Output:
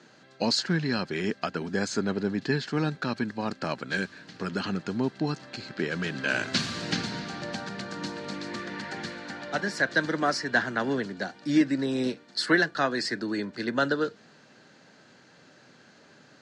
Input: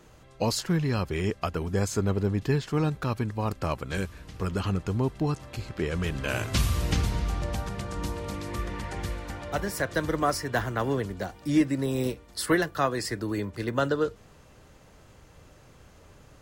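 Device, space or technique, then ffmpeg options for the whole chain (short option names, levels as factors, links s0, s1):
television speaker: -af "highpass=f=160:w=0.5412,highpass=f=160:w=1.3066,equalizer=f=240:t=q:w=4:g=4,equalizer=f=480:t=q:w=4:g=-3,equalizer=f=1100:t=q:w=4:g=-5,equalizer=f=1600:t=q:w=4:g=9,equalizer=f=4300:t=q:w=4:g=9,lowpass=f=7000:w=0.5412,lowpass=f=7000:w=1.3066"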